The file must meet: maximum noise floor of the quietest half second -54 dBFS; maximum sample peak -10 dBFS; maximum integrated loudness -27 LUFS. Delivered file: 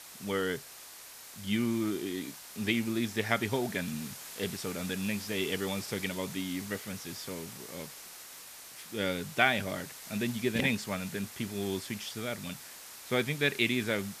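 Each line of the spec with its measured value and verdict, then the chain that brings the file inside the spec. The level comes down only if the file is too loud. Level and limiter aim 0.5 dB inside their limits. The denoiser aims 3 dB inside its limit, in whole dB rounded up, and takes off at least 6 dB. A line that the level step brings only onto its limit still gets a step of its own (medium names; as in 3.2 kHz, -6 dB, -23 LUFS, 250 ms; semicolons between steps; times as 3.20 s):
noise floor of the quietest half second -49 dBFS: fail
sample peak -8.5 dBFS: fail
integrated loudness -33.0 LUFS: pass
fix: noise reduction 8 dB, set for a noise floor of -49 dBFS; peak limiter -10.5 dBFS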